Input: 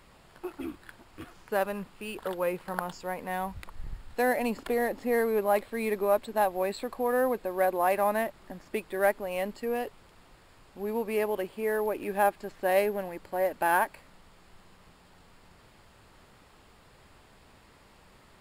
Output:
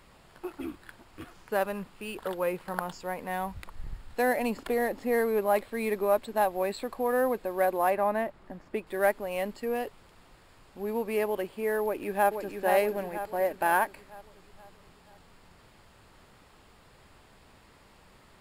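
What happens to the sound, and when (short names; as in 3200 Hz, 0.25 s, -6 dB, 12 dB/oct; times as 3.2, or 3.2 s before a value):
7.9–8.87 high shelf 3200 Hz -11.5 dB
11.83–12.57 echo throw 0.48 s, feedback 50%, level -5.5 dB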